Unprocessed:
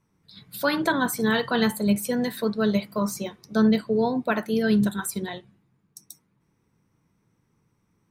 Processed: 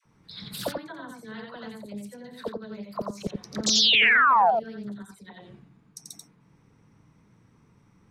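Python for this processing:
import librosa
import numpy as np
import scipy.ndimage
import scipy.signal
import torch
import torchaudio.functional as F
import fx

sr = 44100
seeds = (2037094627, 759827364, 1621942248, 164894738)

p1 = scipy.signal.sosfilt(scipy.signal.butter(2, 12000.0, 'lowpass', fs=sr, output='sos'), x)
p2 = fx.notch(p1, sr, hz=370.0, q=12.0)
p3 = fx.gate_flip(p2, sr, shuts_db=-22.0, range_db=-26)
p4 = fx.spec_paint(p3, sr, seeds[0], shape='fall', start_s=3.66, length_s=0.82, low_hz=630.0, high_hz=5800.0, level_db=-27.0)
p5 = fx.high_shelf(p4, sr, hz=8600.0, db=-10.5)
p6 = fx.dispersion(p5, sr, late='lows', ms=56.0, hz=700.0)
p7 = p6 + fx.echo_single(p6, sr, ms=88, db=-3.0, dry=0)
p8 = fx.doppler_dist(p7, sr, depth_ms=0.72)
y = F.gain(torch.from_numpy(p8), 7.5).numpy()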